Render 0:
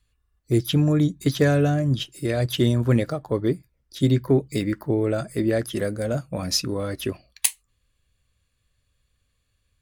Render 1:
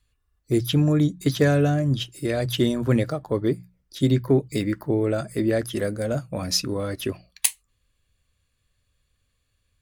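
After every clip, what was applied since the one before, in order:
mains-hum notches 60/120/180 Hz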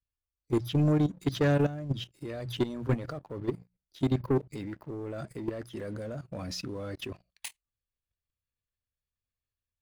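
parametric band 12,000 Hz −11 dB 1.6 octaves
leveller curve on the samples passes 2
output level in coarse steps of 14 dB
level −9 dB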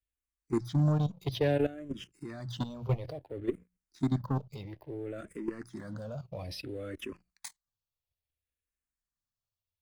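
frequency shifter mixed with the dry sound −0.59 Hz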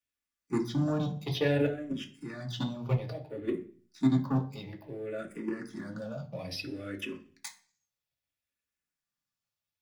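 convolution reverb RT60 0.45 s, pre-delay 3 ms, DRR 1.5 dB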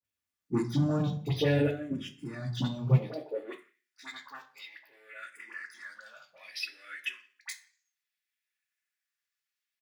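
all-pass dispersion highs, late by 47 ms, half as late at 1,300 Hz
far-end echo of a speakerphone 160 ms, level −27 dB
high-pass filter sweep 83 Hz → 1,800 Hz, 0:02.77–0:03.78

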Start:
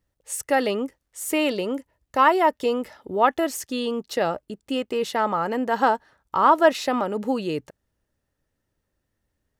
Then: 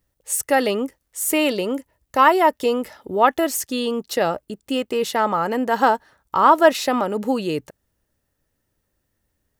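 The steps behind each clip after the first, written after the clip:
high-shelf EQ 9,300 Hz +9.5 dB
level +3 dB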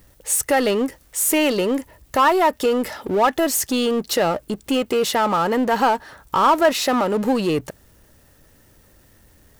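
in parallel at +2 dB: downward compressor, threshold −24 dBFS, peak gain reduction 15.5 dB
on the sum: power curve on the samples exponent 0.7
level −6.5 dB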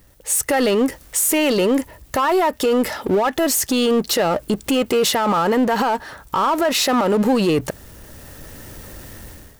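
automatic gain control gain up to 16 dB
brickwall limiter −11 dBFS, peak gain reduction 10.5 dB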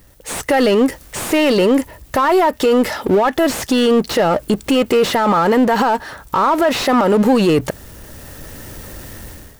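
slew-rate limiting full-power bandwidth 240 Hz
level +4 dB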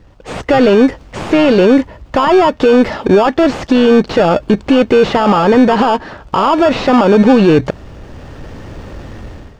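in parallel at −3.5 dB: decimation without filtering 22×
on the sum: high-frequency loss of the air 160 metres
level +1.5 dB

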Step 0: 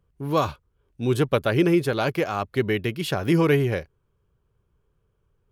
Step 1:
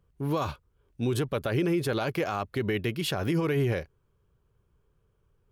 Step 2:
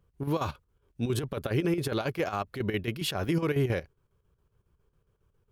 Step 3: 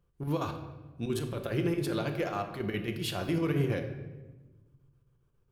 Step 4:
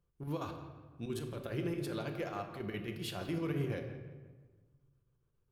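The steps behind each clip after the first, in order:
brickwall limiter −19.5 dBFS, peak gain reduction 10.5 dB
square-wave tremolo 7.3 Hz, depth 60%, duty 70%
rectangular room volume 730 cubic metres, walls mixed, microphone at 0.85 metres; level −4 dB
tape delay 168 ms, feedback 47%, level −12 dB, low-pass 2,600 Hz; level −7 dB

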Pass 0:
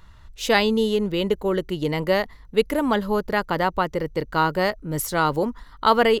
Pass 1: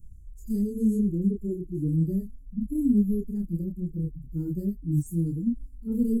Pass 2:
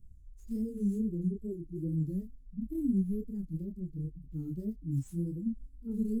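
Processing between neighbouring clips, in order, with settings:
harmonic-percussive split with one part muted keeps harmonic; multi-voice chorus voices 2, 1 Hz, delay 27 ms, depth 3 ms; inverse Chebyshev band-stop filter 650–3,900 Hz, stop band 50 dB; level +6 dB
running median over 3 samples; tape wow and flutter 130 cents; level −7.5 dB

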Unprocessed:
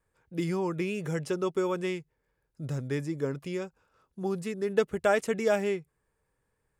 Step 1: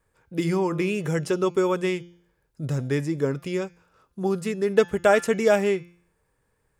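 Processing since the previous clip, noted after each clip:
hum removal 173.7 Hz, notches 39
level +6.5 dB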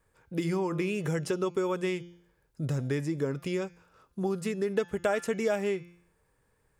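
downward compressor 2.5 to 1, threshold −29 dBFS, peak gain reduction 11 dB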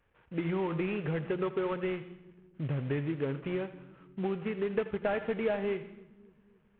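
variable-slope delta modulation 16 kbit/s
echo with a time of its own for lows and highs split 310 Hz, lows 272 ms, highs 82 ms, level −15 dB
level −2 dB

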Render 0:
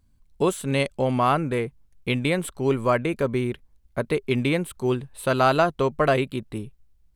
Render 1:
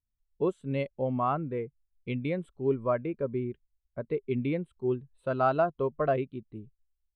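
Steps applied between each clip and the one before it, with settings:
high-frequency loss of the air 68 metres
every bin expanded away from the loudest bin 1.5 to 1
level −6.5 dB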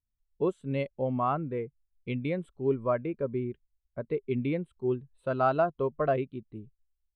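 no processing that can be heard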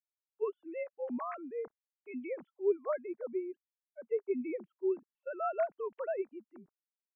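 three sine waves on the formant tracks
level −6.5 dB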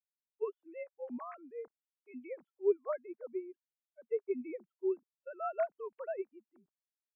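expander for the loud parts 1.5 to 1, over −52 dBFS
level +1 dB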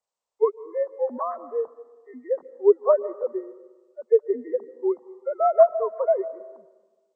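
hearing-aid frequency compression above 1,300 Hz 1.5 to 1
flat-topped bell 720 Hz +14.5 dB
comb and all-pass reverb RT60 1.3 s, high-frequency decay 0.85×, pre-delay 100 ms, DRR 16 dB
level +4 dB

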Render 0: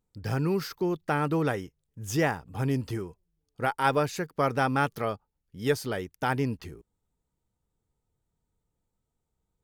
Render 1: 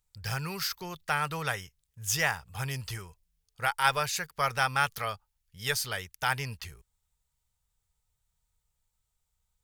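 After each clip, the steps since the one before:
guitar amp tone stack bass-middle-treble 10-0-10
level +8.5 dB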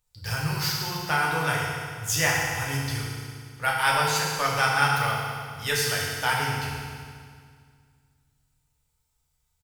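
double-tracking delay 14 ms −13.5 dB
feedback delay network reverb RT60 2 s, low-frequency decay 1.25×, high-frequency decay 0.95×, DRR −4.5 dB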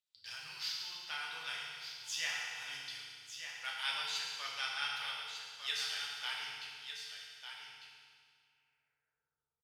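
band-pass filter sweep 3,500 Hz → 410 Hz, 0:07.21–0:09.36
on a send: single-tap delay 1,200 ms −8.5 dB
on the sum: level −4.5 dB

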